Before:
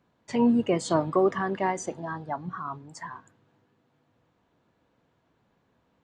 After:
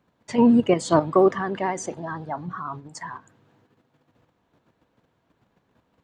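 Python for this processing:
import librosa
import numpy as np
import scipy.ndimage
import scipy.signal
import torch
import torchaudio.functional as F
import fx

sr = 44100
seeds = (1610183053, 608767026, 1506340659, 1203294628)

p1 = fx.vibrato(x, sr, rate_hz=14.0, depth_cents=47.0)
p2 = fx.level_steps(p1, sr, step_db=23)
y = p1 + (p2 * librosa.db_to_amplitude(2.0))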